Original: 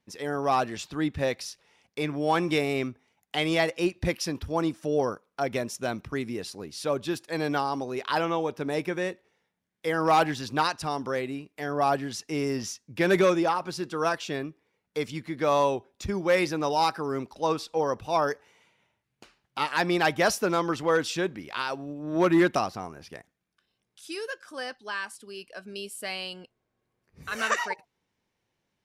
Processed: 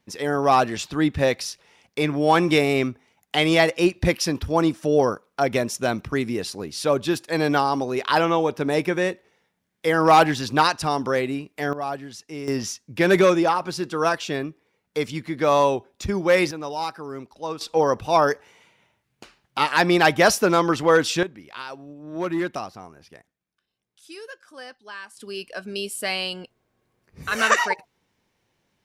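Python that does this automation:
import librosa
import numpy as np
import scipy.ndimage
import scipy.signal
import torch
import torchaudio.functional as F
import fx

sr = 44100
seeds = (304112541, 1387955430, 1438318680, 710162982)

y = fx.gain(x, sr, db=fx.steps((0.0, 7.0), (11.73, -4.5), (12.48, 5.0), (16.51, -4.0), (17.61, 7.0), (21.23, -4.5), (25.17, 8.0)))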